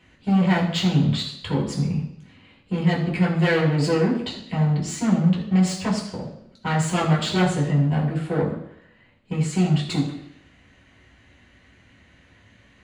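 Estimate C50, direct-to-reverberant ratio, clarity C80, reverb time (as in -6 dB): 6.5 dB, -6.0 dB, 8.5 dB, 0.75 s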